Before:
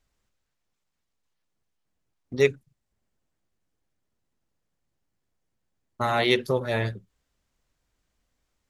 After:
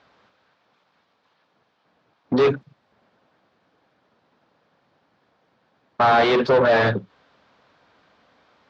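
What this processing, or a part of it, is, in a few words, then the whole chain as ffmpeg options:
overdrive pedal into a guitar cabinet: -filter_complex "[0:a]asplit=2[link_01][link_02];[link_02]highpass=frequency=720:poles=1,volume=37dB,asoftclip=type=tanh:threshold=-5dB[link_03];[link_01][link_03]amix=inputs=2:normalize=0,lowpass=frequency=1400:poles=1,volume=-6dB,highpass=97,equalizer=frequency=360:width_type=q:width=4:gain=-4,equalizer=frequency=2000:width_type=q:width=4:gain=-5,equalizer=frequency=2800:width_type=q:width=4:gain=-4,lowpass=frequency=4500:width=0.5412,lowpass=frequency=4500:width=1.3066,volume=-1.5dB"

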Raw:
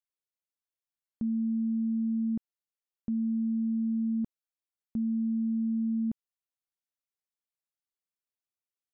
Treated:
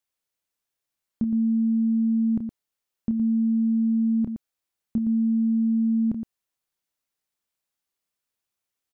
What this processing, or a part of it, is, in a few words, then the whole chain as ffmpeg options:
slapback doubling: -filter_complex "[0:a]asplit=3[link_01][link_02][link_03];[link_02]adelay=29,volume=-8dB[link_04];[link_03]adelay=116,volume=-9dB[link_05];[link_01][link_04][link_05]amix=inputs=3:normalize=0,volume=8dB"

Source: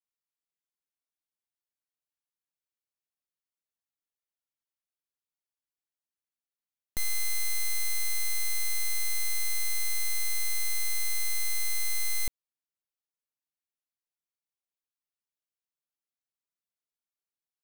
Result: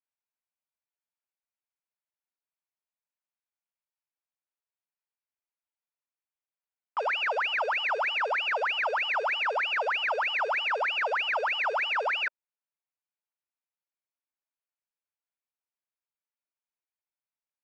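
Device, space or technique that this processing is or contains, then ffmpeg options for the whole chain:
voice changer toy: -af "aeval=exprs='val(0)*sin(2*PI*1700*n/s+1700*0.75/3.2*sin(2*PI*3.2*n/s))':channel_layout=same,highpass=500,equalizer=frequency=610:width_type=q:width=4:gain=5,equalizer=frequency=920:width_type=q:width=4:gain=7,equalizer=frequency=1500:width_type=q:width=4:gain=4,equalizer=frequency=2400:width_type=q:width=4:gain=5,equalizer=frequency=3500:width_type=q:width=4:gain=-9,lowpass=frequency=3800:width=0.5412,lowpass=frequency=3800:width=1.3066,volume=-1.5dB"

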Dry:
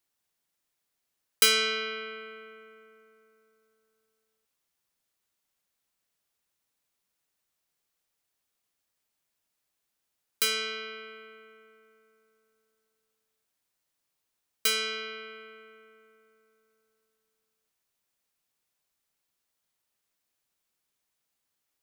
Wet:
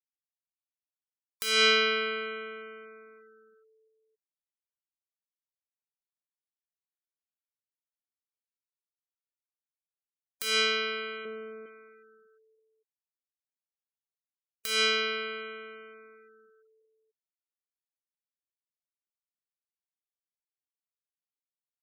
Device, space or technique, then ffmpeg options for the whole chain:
de-esser from a sidechain: -filter_complex "[0:a]asplit=2[link_01][link_02];[link_02]highpass=frequency=6600:width=0.5412,highpass=frequency=6600:width=1.3066,apad=whole_len=962685[link_03];[link_01][link_03]sidechaincompress=threshold=-44dB:ratio=6:attack=3.4:release=48,asettb=1/sr,asplit=3[link_04][link_05][link_06];[link_04]atrim=end=11.254[link_07];[link_05]atrim=start=11.25:end=11.66,asetpts=PTS-STARTPTS,afade=type=in:duration=0.004:curve=qsin,afade=type=out:start_time=0.406:duration=0.004:curve=qsin,tiltshelf=frequency=1100:gain=8.5[link_08];[link_06]atrim=start=11.656[link_09];[link_07][link_08]acrossfade=duration=0.004:curve1=hsin:curve2=qsin[link_10];[link_10][link_09]acrossfade=duration=0.004:curve1=qsin:curve2=hsin,afftfilt=real='re*gte(hypot(re,im),0.00112)':imag='im*gte(hypot(re,im),0.00112)':win_size=1024:overlap=0.75,volume=8dB"

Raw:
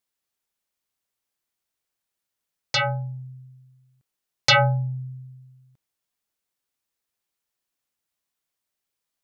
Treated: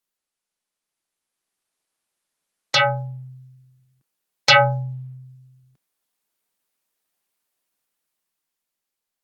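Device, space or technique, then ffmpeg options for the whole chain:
video call: -af "highpass=frequency=150:width=0.5412,highpass=frequency=150:width=1.3066,dynaudnorm=framelen=280:gausssize=9:maxgain=7dB" -ar 48000 -c:a libopus -b:a 24k

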